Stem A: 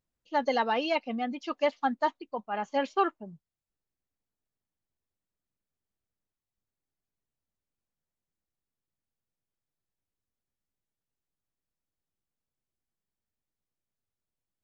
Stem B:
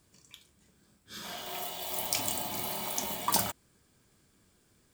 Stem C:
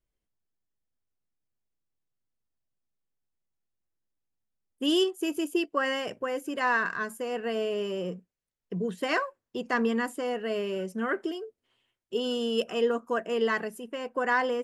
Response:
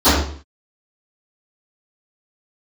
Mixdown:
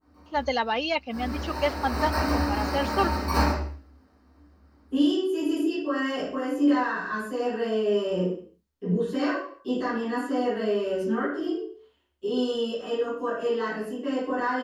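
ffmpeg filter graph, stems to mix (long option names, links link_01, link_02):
-filter_complex "[0:a]volume=0.5dB[link_01];[1:a]aecho=1:1:3.6:0.59,acrusher=samples=13:mix=1:aa=0.000001,volume=-20dB,asplit=3[link_02][link_03][link_04];[link_03]volume=-5.5dB[link_05];[link_04]volume=-19.5dB[link_06];[2:a]alimiter=level_in=1.5dB:limit=-24dB:level=0:latency=1:release=493,volume=-1.5dB,adelay=100,volume=-16dB,asplit=2[link_07][link_08];[link_08]volume=-6.5dB[link_09];[3:a]atrim=start_sample=2205[link_10];[link_05][link_09]amix=inputs=2:normalize=0[link_11];[link_11][link_10]afir=irnorm=-1:irlink=0[link_12];[link_06]aecho=0:1:226:1[link_13];[link_01][link_02][link_07][link_12][link_13]amix=inputs=5:normalize=0,adynamicequalizer=threshold=0.00794:dfrequency=1900:dqfactor=0.7:tfrequency=1900:tqfactor=0.7:attack=5:release=100:ratio=0.375:range=2.5:mode=boostabove:tftype=highshelf"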